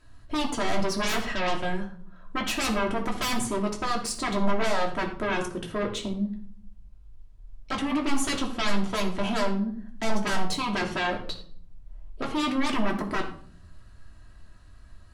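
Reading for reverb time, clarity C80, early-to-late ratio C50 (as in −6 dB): 0.55 s, 12.5 dB, 9.0 dB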